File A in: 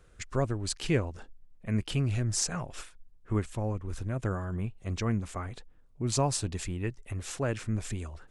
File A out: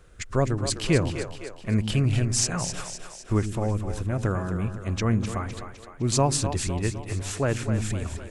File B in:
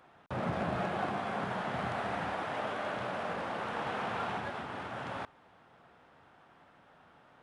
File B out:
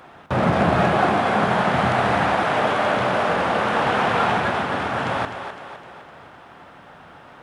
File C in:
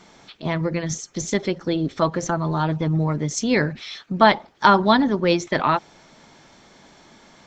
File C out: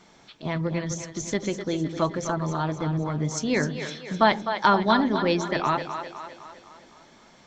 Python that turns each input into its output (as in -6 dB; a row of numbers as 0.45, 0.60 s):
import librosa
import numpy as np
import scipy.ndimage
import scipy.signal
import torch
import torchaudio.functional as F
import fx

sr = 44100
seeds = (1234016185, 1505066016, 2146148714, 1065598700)

y = fx.echo_split(x, sr, split_hz=330.0, low_ms=103, high_ms=255, feedback_pct=52, wet_db=-8.5)
y = librosa.util.normalize(y) * 10.0 ** (-6 / 20.0)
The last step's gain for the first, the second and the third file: +5.5, +15.0, -5.0 dB